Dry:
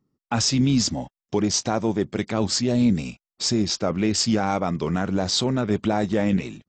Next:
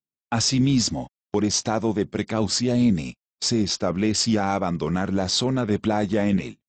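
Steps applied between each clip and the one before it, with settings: gate -32 dBFS, range -29 dB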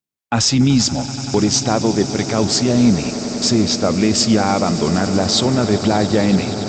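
swelling echo 95 ms, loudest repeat 8, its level -17.5 dB; gain +6 dB

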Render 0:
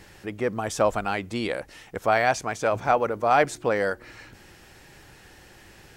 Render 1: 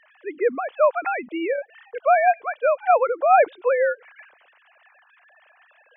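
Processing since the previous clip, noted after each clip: sine-wave speech; gain +4 dB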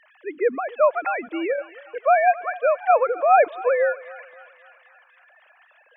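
thinning echo 0.267 s, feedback 67%, high-pass 740 Hz, level -16.5 dB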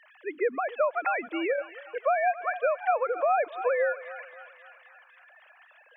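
low shelf 290 Hz -9.5 dB; compressor 6:1, threshold -22 dBFS, peak gain reduction 10 dB

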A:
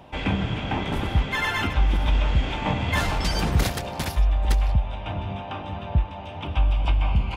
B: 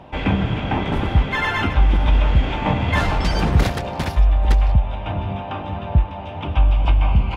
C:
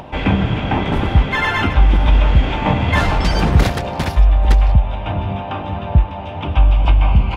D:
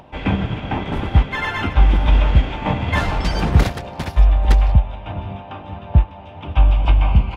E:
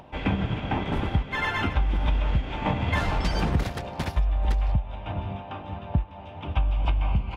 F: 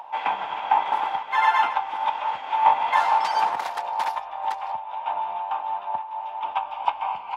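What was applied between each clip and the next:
LPF 2500 Hz 6 dB/oct; gain +5.5 dB
upward compressor, threshold -33 dBFS; gain +3.5 dB
upward expander 1.5:1, over -26 dBFS
compressor 10:1, threshold -16 dBFS, peak gain reduction 10.5 dB; gain -3.5 dB
resonant high-pass 880 Hz, resonance Q 6.8

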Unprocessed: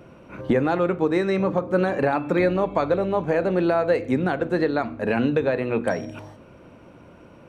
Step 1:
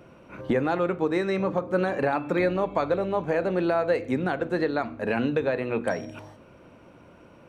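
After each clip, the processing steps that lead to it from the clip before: low shelf 450 Hz -3 dB; gain -2 dB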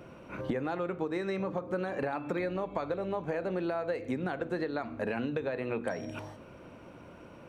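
compressor 6:1, threshold -31 dBFS, peak gain reduction 12 dB; gain +1 dB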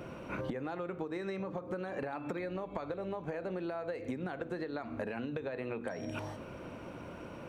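compressor 10:1, threshold -39 dBFS, peak gain reduction 12.5 dB; gain +4.5 dB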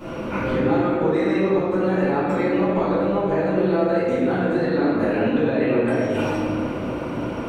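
reverb RT60 2.3 s, pre-delay 3 ms, DRR -16.5 dB

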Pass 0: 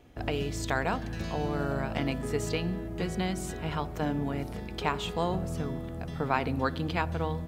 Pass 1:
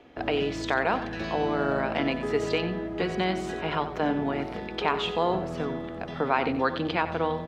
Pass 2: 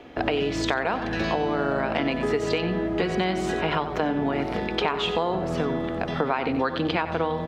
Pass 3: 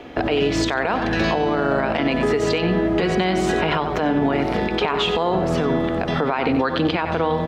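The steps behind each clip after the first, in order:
three-band isolator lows -15 dB, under 230 Hz, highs -23 dB, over 4700 Hz; in parallel at +2 dB: limiter -23.5 dBFS, peak gain reduction 11 dB; on the sum: echo 92 ms -12.5 dB
compressor, threshold -29 dBFS, peak gain reduction 11 dB; gain +8 dB
limiter -17.5 dBFS, peak gain reduction 9 dB; gain +7 dB

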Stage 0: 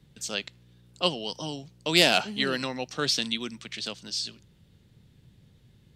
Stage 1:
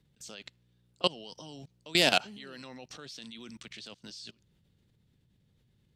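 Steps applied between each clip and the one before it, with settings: level quantiser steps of 23 dB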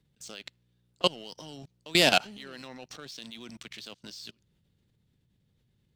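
sample leveller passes 1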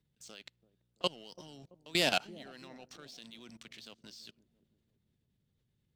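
dark delay 0.335 s, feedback 45%, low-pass 480 Hz, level -15 dB; gain -7.5 dB

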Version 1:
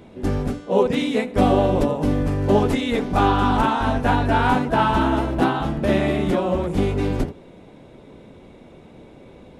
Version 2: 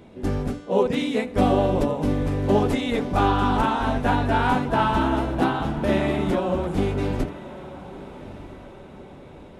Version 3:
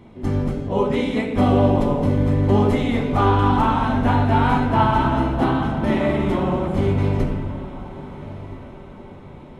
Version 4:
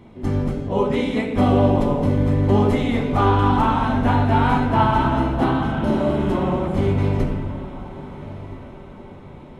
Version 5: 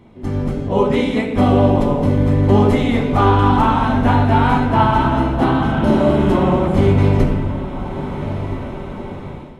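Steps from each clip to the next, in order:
diffused feedback echo 1.267 s, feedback 45%, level -16 dB; gain -2.5 dB
high shelf 3900 Hz -7 dB; reverb RT60 1.3 s, pre-delay 6 ms, DRR 1.5 dB
spectral repair 5.71–6.38, 1300–3800 Hz
AGC gain up to 12 dB; gain -1 dB

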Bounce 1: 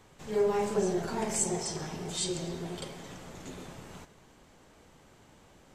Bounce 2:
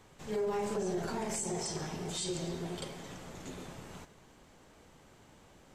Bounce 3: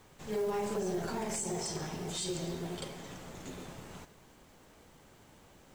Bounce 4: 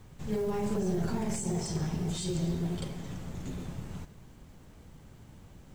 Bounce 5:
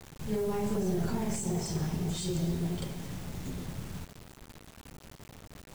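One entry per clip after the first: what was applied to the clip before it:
limiter -25.5 dBFS, peak gain reduction 9.5 dB; gain -1 dB
companded quantiser 6-bit
tone controls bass +14 dB, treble 0 dB; gain -1.5 dB
requantised 8-bit, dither none

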